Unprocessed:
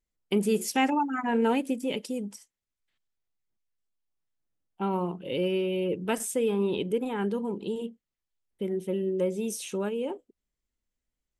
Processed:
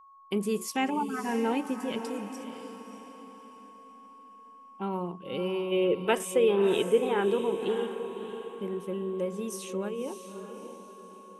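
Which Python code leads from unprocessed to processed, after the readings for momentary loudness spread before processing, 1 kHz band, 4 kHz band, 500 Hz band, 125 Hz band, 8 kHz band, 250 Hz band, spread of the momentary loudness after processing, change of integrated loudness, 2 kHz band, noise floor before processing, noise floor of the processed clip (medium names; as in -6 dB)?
9 LU, -1.5 dB, 0.0 dB, +1.5 dB, -3.5 dB, -3.5 dB, -2.5 dB, 20 LU, -0.5 dB, -0.5 dB, under -85 dBFS, -52 dBFS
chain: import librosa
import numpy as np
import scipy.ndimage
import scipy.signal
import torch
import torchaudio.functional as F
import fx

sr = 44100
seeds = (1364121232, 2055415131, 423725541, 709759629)

y = fx.spec_box(x, sr, start_s=5.72, length_s=2.15, low_hz=330.0, high_hz=3900.0, gain_db=8)
y = y + 10.0 ** (-48.0 / 20.0) * np.sin(2.0 * np.pi * 1100.0 * np.arange(len(y)) / sr)
y = fx.echo_diffused(y, sr, ms=605, feedback_pct=42, wet_db=-9)
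y = y * librosa.db_to_amplitude(-4.0)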